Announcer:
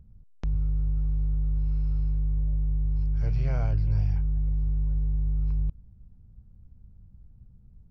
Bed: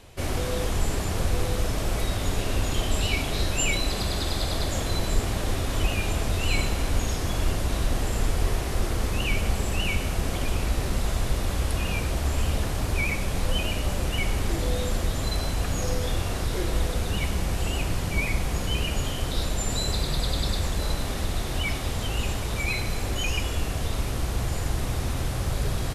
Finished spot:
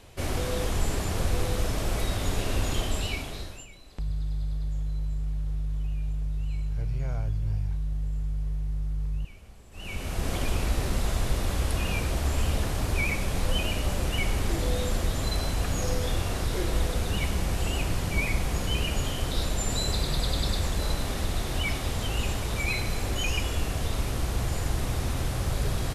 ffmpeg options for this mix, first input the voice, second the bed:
ffmpeg -i stem1.wav -i stem2.wav -filter_complex "[0:a]adelay=3550,volume=-4dB[link_01];[1:a]volume=23dB,afade=type=out:start_time=2.72:duration=0.95:silence=0.0630957,afade=type=in:start_time=9.71:duration=0.62:silence=0.0595662[link_02];[link_01][link_02]amix=inputs=2:normalize=0" out.wav

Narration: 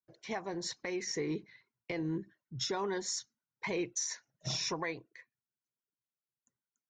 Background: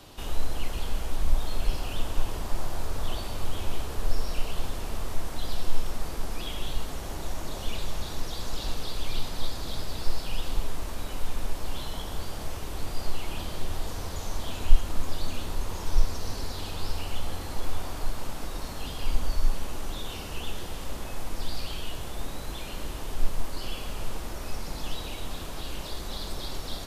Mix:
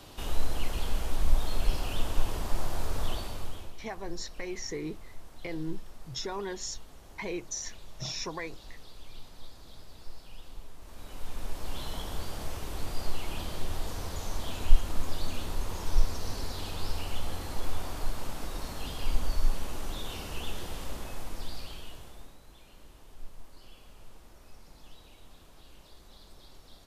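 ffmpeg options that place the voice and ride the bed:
ffmpeg -i stem1.wav -i stem2.wav -filter_complex "[0:a]adelay=3550,volume=-1dB[link_01];[1:a]volume=14dB,afade=type=out:start_time=3.03:duration=0.7:silence=0.158489,afade=type=in:start_time=10.79:duration=1.12:silence=0.188365,afade=type=out:start_time=20.77:duration=1.61:silence=0.149624[link_02];[link_01][link_02]amix=inputs=2:normalize=0" out.wav

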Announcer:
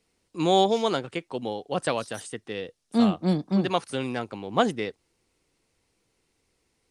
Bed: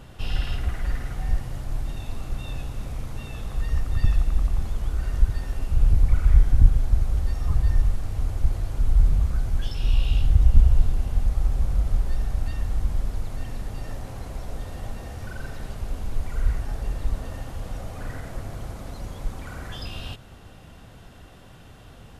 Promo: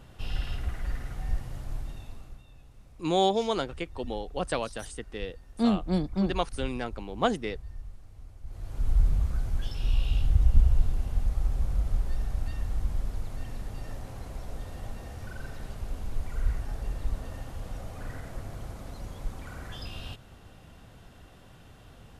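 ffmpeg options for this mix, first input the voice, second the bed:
ffmpeg -i stem1.wav -i stem2.wav -filter_complex "[0:a]adelay=2650,volume=-3.5dB[link_01];[1:a]volume=10.5dB,afade=type=out:start_time=1.7:duration=0.75:silence=0.16788,afade=type=in:start_time=8.45:duration=0.45:silence=0.149624[link_02];[link_01][link_02]amix=inputs=2:normalize=0" out.wav

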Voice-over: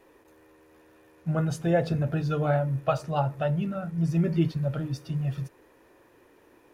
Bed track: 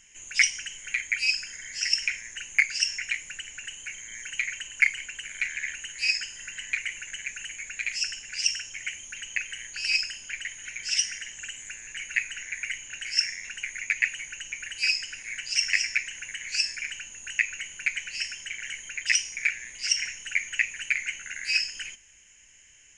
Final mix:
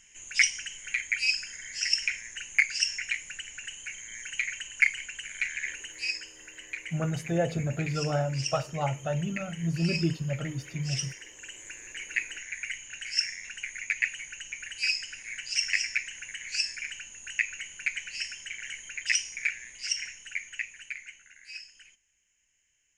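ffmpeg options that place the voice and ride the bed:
ffmpeg -i stem1.wav -i stem2.wav -filter_complex "[0:a]adelay=5650,volume=-3.5dB[link_01];[1:a]volume=4dB,afade=type=out:start_time=5.65:duration=0.55:silence=0.446684,afade=type=in:start_time=11.29:duration=0.48:silence=0.530884,afade=type=out:start_time=19.32:duration=2:silence=0.188365[link_02];[link_01][link_02]amix=inputs=2:normalize=0" out.wav

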